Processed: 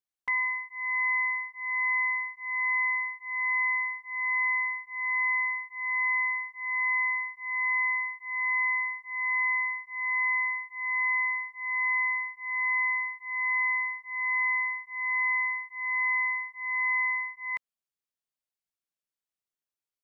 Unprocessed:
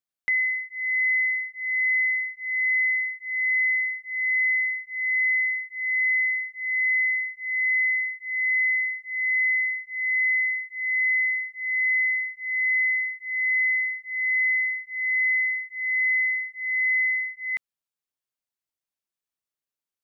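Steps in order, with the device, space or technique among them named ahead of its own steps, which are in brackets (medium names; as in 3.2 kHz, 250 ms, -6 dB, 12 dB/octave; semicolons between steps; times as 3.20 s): octave pedal (harmony voices -12 st -9 dB); trim -5 dB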